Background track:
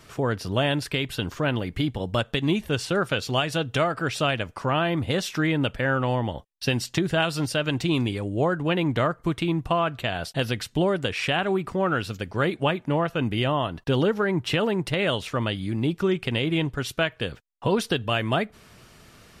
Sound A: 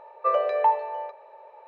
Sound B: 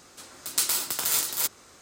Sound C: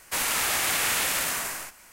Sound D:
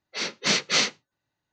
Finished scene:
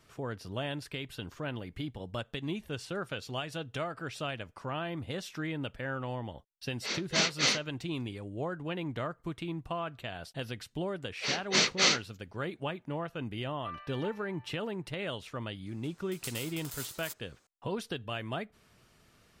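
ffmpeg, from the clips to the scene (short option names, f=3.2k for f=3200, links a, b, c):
-filter_complex "[4:a]asplit=2[a][b];[0:a]volume=-12.5dB[c];[1:a]highpass=f=1.4k:w=0.5412,highpass=f=1.4k:w=1.3066[d];[a]atrim=end=1.52,asetpts=PTS-STARTPTS,volume=-5.5dB,afade=t=in:d=0.004:c=hsin,afade=t=out:st=1.516:d=0.004:c=hsin,adelay=6690[e];[b]atrim=end=1.52,asetpts=PTS-STARTPTS,volume=-3dB,afade=t=in:d=0.004:c=hsin,afade=t=out:st=1.516:d=0.004:c=hsin,adelay=11080[f];[d]atrim=end=1.67,asetpts=PTS-STARTPTS,volume=-10dB,afade=t=in:d=0.004:c=hsin,afade=t=out:st=1.666:d=0.004:c=hsin,adelay=13400[g];[2:a]atrim=end=1.81,asetpts=PTS-STARTPTS,volume=-17dB,afade=t=in:d=0.004:c=hsin,afade=t=out:st=1.806:d=0.004:c=hsin,adelay=15660[h];[c][e][f][g][h]amix=inputs=5:normalize=0"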